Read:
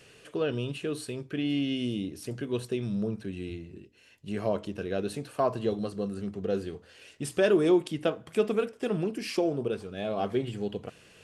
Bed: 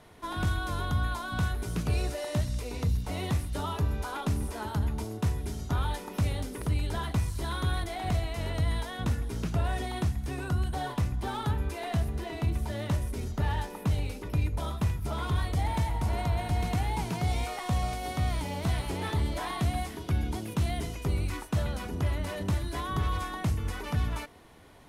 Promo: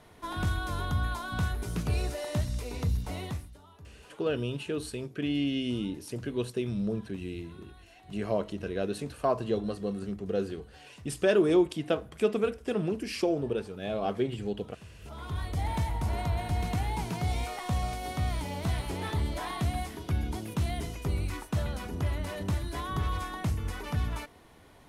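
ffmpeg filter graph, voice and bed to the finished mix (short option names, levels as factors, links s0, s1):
-filter_complex "[0:a]adelay=3850,volume=0.944[s0];[1:a]volume=10,afade=t=out:st=3.03:d=0.55:silence=0.0841395,afade=t=in:st=14.91:d=0.81:silence=0.0891251[s1];[s0][s1]amix=inputs=2:normalize=0"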